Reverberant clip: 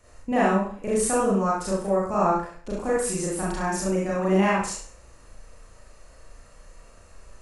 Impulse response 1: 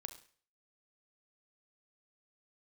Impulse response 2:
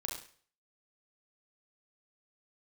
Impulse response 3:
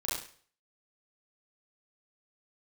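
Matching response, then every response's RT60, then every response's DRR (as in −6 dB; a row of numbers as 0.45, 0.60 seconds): 3; 0.45, 0.45, 0.45 seconds; 8.5, 0.0, −7.0 decibels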